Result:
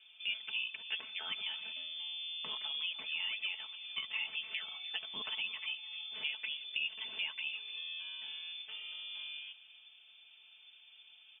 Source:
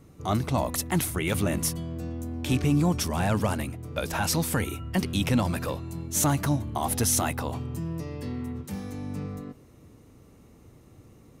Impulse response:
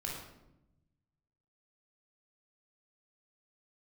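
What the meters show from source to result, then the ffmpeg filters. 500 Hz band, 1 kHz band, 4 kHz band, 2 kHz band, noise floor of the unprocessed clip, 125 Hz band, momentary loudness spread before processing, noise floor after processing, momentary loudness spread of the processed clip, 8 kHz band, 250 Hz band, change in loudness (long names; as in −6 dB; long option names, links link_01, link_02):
−31.0 dB, −23.5 dB, +2.0 dB, −3.5 dB, −54 dBFS, below −40 dB, 11 LU, −61 dBFS, 20 LU, below −40 dB, −40.0 dB, −10.5 dB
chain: -af "equalizer=frequency=125:width_type=o:width=1:gain=-12,equalizer=frequency=250:width_type=o:width=1:gain=-9,equalizer=frequency=1000:width_type=o:width=1:gain=11,equalizer=frequency=2000:width_type=o:width=1:gain=-8,lowpass=frequency=3100:width_type=q:width=0.5098,lowpass=frequency=3100:width_type=q:width=0.6013,lowpass=frequency=3100:width_type=q:width=0.9,lowpass=frequency=3100:width_type=q:width=2.563,afreqshift=-3600,acompressor=threshold=-41dB:ratio=2,highpass=75,aecho=1:1:4.6:0.75,aecho=1:1:301:0.141,volume=-4.5dB"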